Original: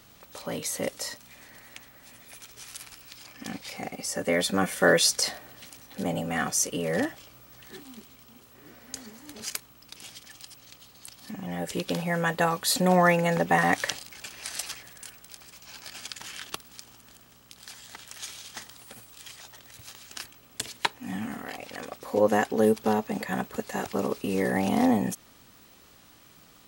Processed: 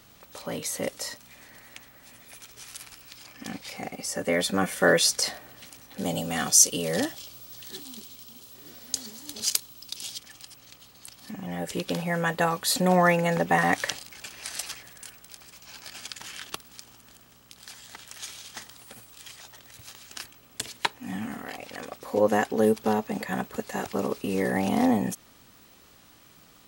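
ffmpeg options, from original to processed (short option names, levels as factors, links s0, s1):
-filter_complex "[0:a]asettb=1/sr,asplit=3[s0][s1][s2];[s0]atrim=end=6.034[s3];[s1]atrim=start=6.03:end=10.18,asetpts=PTS-STARTPTS,afade=t=in:d=0.004:c=qsin,afade=t=out:st=4.146:d=0.004:c=qsin,highshelf=f=2800:t=q:w=1.5:g=8[s4];[s2]atrim=start=10.176[s5];[s3][s4]acrossfade=d=0.004:c1=hsin:c2=qsin[s6];[s6][s5]acrossfade=d=0.004:c1=qsin:c2=hsin"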